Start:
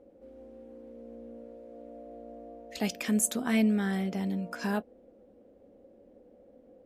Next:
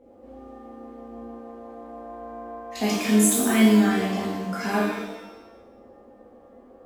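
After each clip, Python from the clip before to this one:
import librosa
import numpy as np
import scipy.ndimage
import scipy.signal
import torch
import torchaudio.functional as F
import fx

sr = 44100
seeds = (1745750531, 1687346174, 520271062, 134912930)

y = fx.rev_shimmer(x, sr, seeds[0], rt60_s=1.0, semitones=7, shimmer_db=-8, drr_db=-7.0)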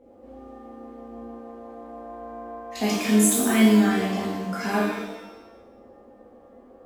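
y = x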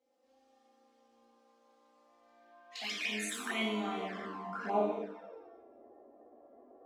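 y = fx.filter_sweep_bandpass(x, sr, from_hz=5200.0, to_hz=580.0, start_s=2.16, end_s=5.03, q=1.5)
y = fx.env_flanger(y, sr, rest_ms=3.9, full_db=-29.5)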